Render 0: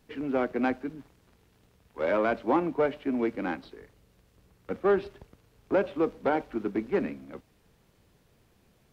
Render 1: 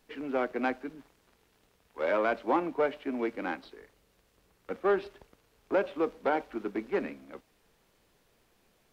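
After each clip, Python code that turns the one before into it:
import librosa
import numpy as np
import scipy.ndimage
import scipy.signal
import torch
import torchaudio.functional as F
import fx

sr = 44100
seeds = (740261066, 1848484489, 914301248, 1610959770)

y = fx.peak_eq(x, sr, hz=99.0, db=-12.0, octaves=2.6)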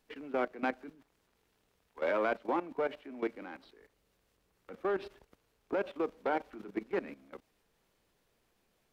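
y = fx.level_steps(x, sr, step_db=15)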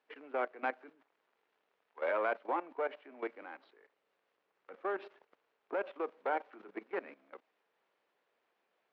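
y = fx.bandpass_edges(x, sr, low_hz=500.0, high_hz=2500.0)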